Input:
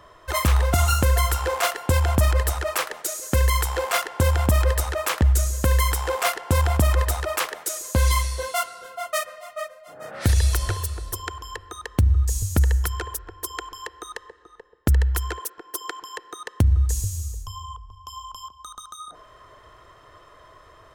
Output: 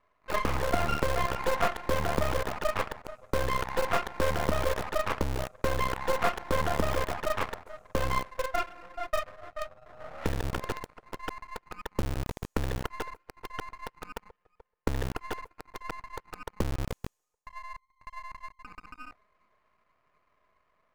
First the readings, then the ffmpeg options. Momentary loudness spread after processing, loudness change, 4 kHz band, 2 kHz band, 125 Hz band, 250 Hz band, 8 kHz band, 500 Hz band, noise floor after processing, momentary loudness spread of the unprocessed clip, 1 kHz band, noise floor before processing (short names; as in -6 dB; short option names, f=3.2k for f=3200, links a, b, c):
16 LU, -9.0 dB, -9.5 dB, -5.5 dB, -15.0 dB, -5.0 dB, -17.0 dB, -2.5 dB, -76 dBFS, 18 LU, -4.0 dB, -51 dBFS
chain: -filter_complex "[0:a]acrossover=split=250 2000:gain=0.158 1 0.112[a][b][c];[a][b][c]amix=inputs=3:normalize=0,afwtdn=0.0126,highshelf=f=2.1k:g=-10.5,acrossover=split=530[d][e];[d]acrusher=bits=3:dc=4:mix=0:aa=0.000001[f];[e]aeval=exprs='max(val(0),0)':c=same[g];[f][g]amix=inputs=2:normalize=0,volume=4dB"